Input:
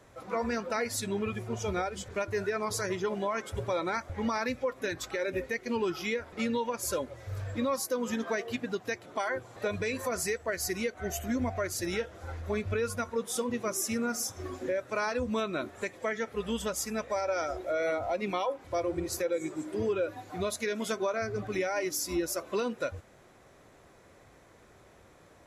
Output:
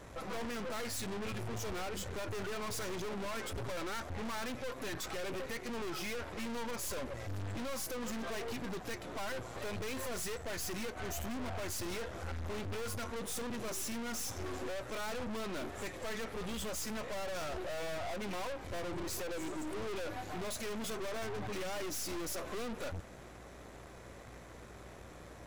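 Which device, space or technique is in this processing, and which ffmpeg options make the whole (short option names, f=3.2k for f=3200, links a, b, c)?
valve amplifier with mains hum: -af "aeval=exprs='(tanh(251*val(0)+0.75)-tanh(0.75))/251':c=same,aeval=exprs='val(0)+0.000562*(sin(2*PI*60*n/s)+sin(2*PI*2*60*n/s)/2+sin(2*PI*3*60*n/s)/3+sin(2*PI*4*60*n/s)/4+sin(2*PI*5*60*n/s)/5)':c=same,volume=9dB"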